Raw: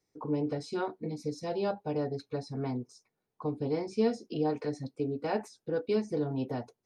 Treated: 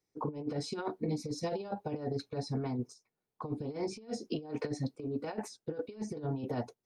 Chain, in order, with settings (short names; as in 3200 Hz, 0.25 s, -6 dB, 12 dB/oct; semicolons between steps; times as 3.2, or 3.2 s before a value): gate -49 dBFS, range -9 dB; negative-ratio compressor -35 dBFS, ratio -0.5